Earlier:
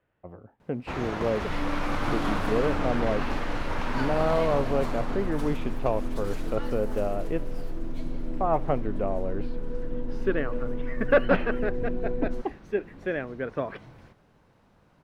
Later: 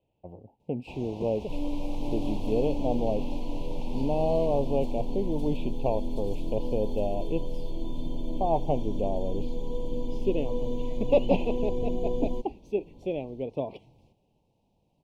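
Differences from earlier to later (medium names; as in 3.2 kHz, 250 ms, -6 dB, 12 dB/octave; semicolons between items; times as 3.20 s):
first sound -9.0 dB; second sound: remove boxcar filter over 38 samples; master: add elliptic band-stop 890–2600 Hz, stop band 80 dB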